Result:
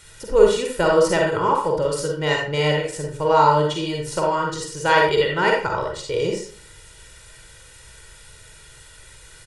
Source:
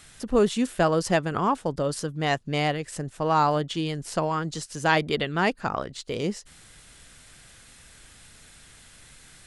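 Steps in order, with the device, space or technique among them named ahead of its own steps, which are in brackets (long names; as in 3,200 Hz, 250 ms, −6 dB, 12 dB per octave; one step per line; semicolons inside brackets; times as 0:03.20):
microphone above a desk (comb filter 2.1 ms, depth 82%; convolution reverb RT60 0.45 s, pre-delay 42 ms, DRR −0.5 dB)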